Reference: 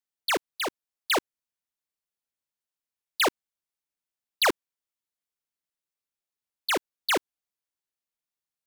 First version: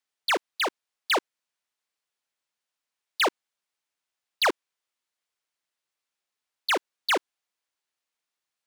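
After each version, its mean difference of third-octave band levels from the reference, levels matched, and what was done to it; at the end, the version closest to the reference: 4.0 dB: bell 14000 Hz -8 dB 0.27 oct; overdrive pedal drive 14 dB, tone 5000 Hz, clips at -18 dBFS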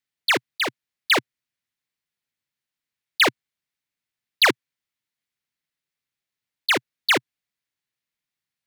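2.5 dB: block floating point 7-bit; graphic EQ 125/250/2000/4000 Hz +11/+4/+9/+5 dB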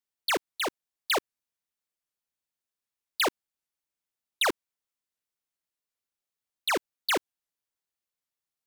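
1.5 dB: compressor, threshold -24 dBFS, peak gain reduction 3.5 dB; record warp 78 rpm, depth 250 cents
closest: third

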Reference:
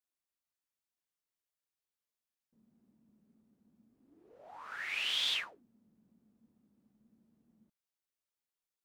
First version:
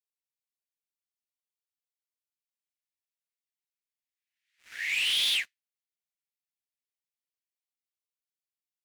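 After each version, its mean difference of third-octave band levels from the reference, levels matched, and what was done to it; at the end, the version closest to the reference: 6.0 dB: steep high-pass 1900 Hz 48 dB/oct; sample leveller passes 3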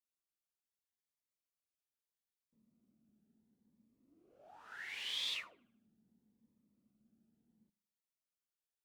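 1.5 dB: on a send: dark delay 76 ms, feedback 46%, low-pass 1800 Hz, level -20 dB; on the sum: cascading phaser rising 0.74 Hz; gain -5 dB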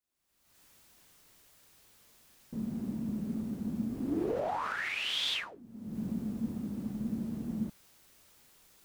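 14.5 dB: recorder AGC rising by 50 dB/s; low shelf 320 Hz +7 dB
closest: second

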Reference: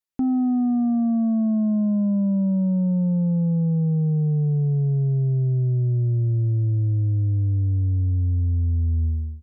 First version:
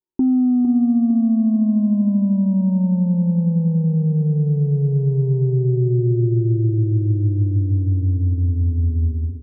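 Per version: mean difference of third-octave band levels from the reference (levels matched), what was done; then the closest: 2.5 dB: tilt shelf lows +9.5 dB, about 850 Hz; small resonant body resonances 360/920 Hz, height 17 dB; on a send: feedback echo 0.455 s, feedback 51%, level -10 dB; on the sum: gain -7.5 dB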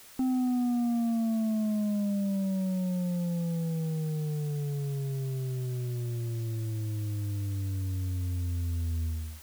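14.5 dB: bell 120 Hz -9 dB 1.7 oct; notch 1000 Hz, Q 20; requantised 8-bit, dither triangular; gain -3.5 dB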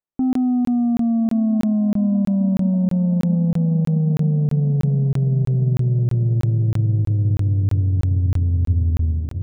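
7.0 dB: LPF 1100 Hz 12 dB/oct; diffused feedback echo 1.235 s, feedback 61%, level -12 dB; crackling interface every 0.32 s, samples 1024, zero, from 0.33; gain +2.5 dB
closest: first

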